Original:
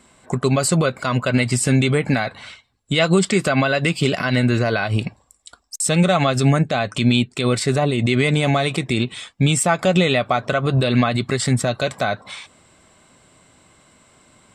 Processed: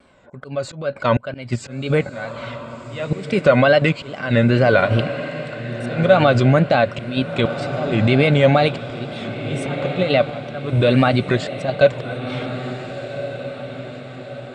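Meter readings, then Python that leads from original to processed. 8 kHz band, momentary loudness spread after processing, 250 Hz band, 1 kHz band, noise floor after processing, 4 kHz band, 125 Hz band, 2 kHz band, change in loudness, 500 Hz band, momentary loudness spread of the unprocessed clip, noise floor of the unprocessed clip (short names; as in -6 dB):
under -15 dB, 16 LU, -1.0 dB, +1.0 dB, -37 dBFS, -3.5 dB, -0.5 dB, 0.0 dB, 0.0 dB, +3.5 dB, 7 LU, -60 dBFS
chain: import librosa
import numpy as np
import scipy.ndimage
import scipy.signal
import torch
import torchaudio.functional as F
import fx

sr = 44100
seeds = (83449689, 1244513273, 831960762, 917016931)

p1 = scipy.signal.sosfilt(scipy.signal.butter(2, 3500.0, 'lowpass', fs=sr, output='sos'), x)
p2 = fx.peak_eq(p1, sr, hz=1600.0, db=-2.5, octaves=0.77)
p3 = fx.auto_swell(p2, sr, attack_ms=374.0)
p4 = fx.level_steps(p3, sr, step_db=23)
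p5 = p3 + F.gain(torch.from_numpy(p4), 2.5).numpy()
p6 = fx.wow_flutter(p5, sr, seeds[0], rate_hz=2.1, depth_cents=120.0)
p7 = fx.small_body(p6, sr, hz=(560.0, 1500.0), ring_ms=45, db=10)
p8 = p7 + fx.echo_diffused(p7, sr, ms=1458, feedback_pct=50, wet_db=-10.5, dry=0)
y = F.gain(torch.from_numpy(p8), -2.5).numpy()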